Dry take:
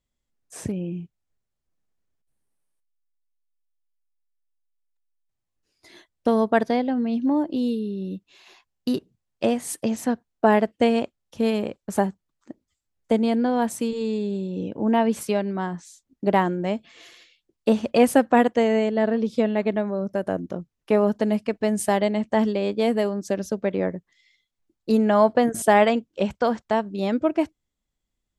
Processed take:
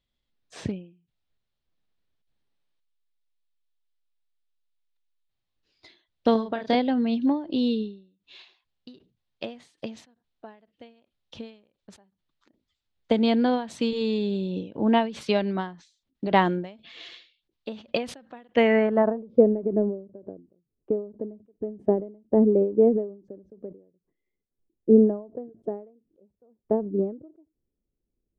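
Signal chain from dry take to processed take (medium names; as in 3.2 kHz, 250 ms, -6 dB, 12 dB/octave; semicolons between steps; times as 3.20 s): low-pass sweep 3.8 kHz -> 410 Hz, 18.42–19.50 s; 6.32–6.75 s: doubling 31 ms -4 dB; endings held to a fixed fall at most 130 dB/s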